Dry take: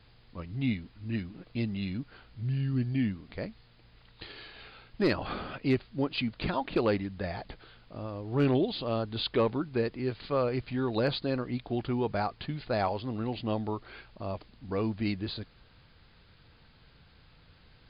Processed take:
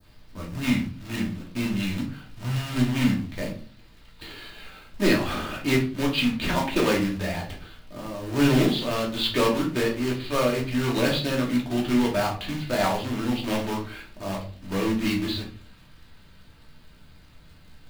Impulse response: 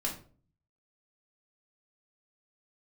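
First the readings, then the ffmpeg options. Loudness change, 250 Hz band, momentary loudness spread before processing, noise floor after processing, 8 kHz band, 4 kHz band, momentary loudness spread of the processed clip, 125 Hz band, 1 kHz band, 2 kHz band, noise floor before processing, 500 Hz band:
+6.5 dB, +7.5 dB, 16 LU, -52 dBFS, no reading, +9.5 dB, 16 LU, +4.0 dB, +5.5 dB, +9.5 dB, -60 dBFS, +4.5 dB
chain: -filter_complex "[0:a]acrusher=bits=2:mode=log:mix=0:aa=0.000001,adynamicequalizer=threshold=0.00501:dfrequency=2700:dqfactor=0.83:tfrequency=2700:tqfactor=0.83:attack=5:release=100:ratio=0.375:range=3:mode=boostabove:tftype=bell[s0];[1:a]atrim=start_sample=2205[s1];[s0][s1]afir=irnorm=-1:irlink=0"

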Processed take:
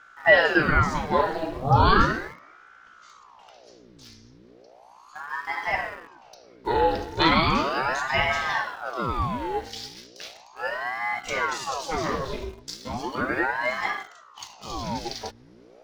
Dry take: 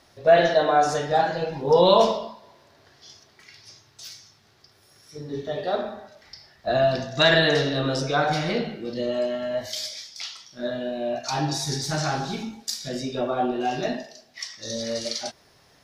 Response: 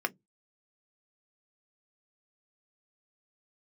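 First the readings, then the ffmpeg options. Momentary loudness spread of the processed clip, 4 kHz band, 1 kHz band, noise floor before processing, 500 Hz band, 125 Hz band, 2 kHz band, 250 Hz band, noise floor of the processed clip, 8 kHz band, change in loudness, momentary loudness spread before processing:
20 LU, -4.0 dB, +1.0 dB, -58 dBFS, -6.0 dB, +0.5 dB, +4.5 dB, -1.5 dB, -52 dBFS, -7.0 dB, -1.0 dB, 18 LU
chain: -filter_complex "[0:a]aemphasis=mode=reproduction:type=50fm,aeval=exprs='val(0)+0.00501*(sin(2*PI*60*n/s)+sin(2*PI*2*60*n/s)/2+sin(2*PI*3*60*n/s)/3+sin(2*PI*4*60*n/s)/4+sin(2*PI*5*60*n/s)/5)':c=same,asplit=2[s0][s1];[s1]aeval=exprs='val(0)*gte(abs(val(0)),0.0158)':c=same,volume=0.447[s2];[s0][s2]amix=inputs=2:normalize=0,aeval=exprs='val(0)*sin(2*PI*800*n/s+800*0.8/0.36*sin(2*PI*0.36*n/s))':c=same,volume=0.841"

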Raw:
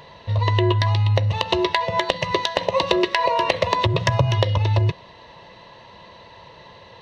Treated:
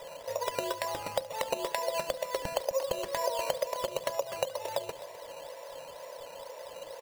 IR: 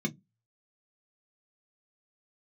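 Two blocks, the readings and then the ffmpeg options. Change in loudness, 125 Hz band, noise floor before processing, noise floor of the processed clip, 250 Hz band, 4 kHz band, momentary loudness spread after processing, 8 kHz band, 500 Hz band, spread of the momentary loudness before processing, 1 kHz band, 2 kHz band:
-14.5 dB, -33.5 dB, -46 dBFS, -47 dBFS, -20.5 dB, -14.0 dB, 12 LU, no reading, -8.0 dB, 4 LU, -12.5 dB, -14.5 dB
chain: -filter_complex "[0:a]highpass=f=550:t=q:w=6.7,acompressor=threshold=0.0708:ratio=4,acrusher=samples=10:mix=1:aa=0.000001:lfo=1:lforange=6:lforate=2.1,aecho=1:1:72|257:0.1|0.178,asplit=2[s0][s1];[1:a]atrim=start_sample=2205[s2];[s1][s2]afir=irnorm=-1:irlink=0,volume=0.075[s3];[s0][s3]amix=inputs=2:normalize=0,volume=0.473"

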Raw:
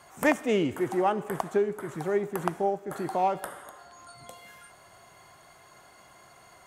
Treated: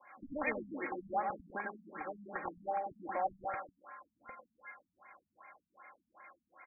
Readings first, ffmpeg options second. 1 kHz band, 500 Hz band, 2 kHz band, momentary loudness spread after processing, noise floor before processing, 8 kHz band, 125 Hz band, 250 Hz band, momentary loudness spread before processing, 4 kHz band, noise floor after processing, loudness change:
-7.5 dB, -15.0 dB, -7.0 dB, 22 LU, -55 dBFS, under -35 dB, -19.5 dB, -15.5 dB, 21 LU, under -40 dB, under -85 dBFS, -11.5 dB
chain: -filter_complex "[0:a]aderivative,aecho=1:1:3.7:0.85,aecho=1:1:98|196|294|392|490|588|686:0.708|0.361|0.184|0.0939|0.0479|0.0244|0.0125,acrossover=split=280|1700|3200[s0][s1][s2][s3];[s3]aeval=exprs='(mod(31.6*val(0)+1,2)-1)/31.6':c=same[s4];[s0][s1][s2][s4]amix=inputs=4:normalize=0,lowpass=5500,asoftclip=type=tanh:threshold=0.0168,afftfilt=real='re*lt(b*sr/1024,240*pow(2500/240,0.5+0.5*sin(2*PI*2.6*pts/sr)))':imag='im*lt(b*sr/1024,240*pow(2500/240,0.5+0.5*sin(2*PI*2.6*pts/sr)))':win_size=1024:overlap=0.75,volume=3.55"

